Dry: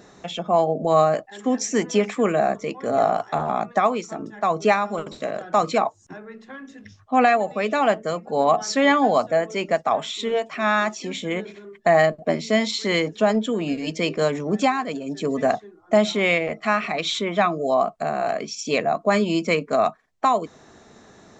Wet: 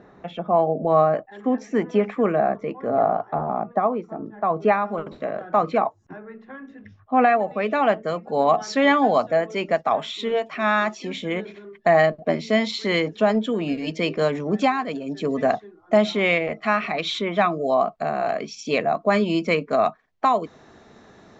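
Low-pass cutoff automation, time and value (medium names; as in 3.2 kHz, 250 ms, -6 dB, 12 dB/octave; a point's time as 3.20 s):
2.63 s 1.8 kHz
3.49 s 1 kHz
4.23 s 1 kHz
4.79 s 2 kHz
7.15 s 2 kHz
8.35 s 4.4 kHz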